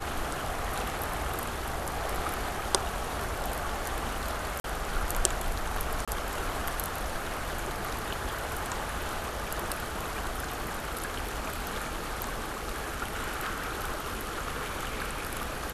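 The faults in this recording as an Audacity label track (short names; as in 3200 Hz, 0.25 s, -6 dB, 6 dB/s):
4.600000	4.640000	gap 42 ms
6.050000	6.080000	gap 26 ms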